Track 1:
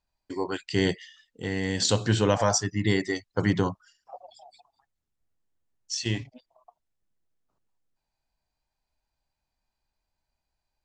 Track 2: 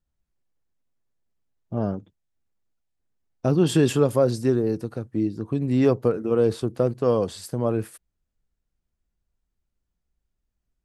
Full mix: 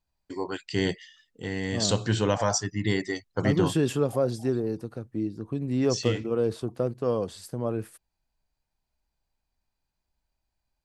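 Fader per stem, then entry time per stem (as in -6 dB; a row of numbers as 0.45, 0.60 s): -2.0, -5.5 dB; 0.00, 0.00 s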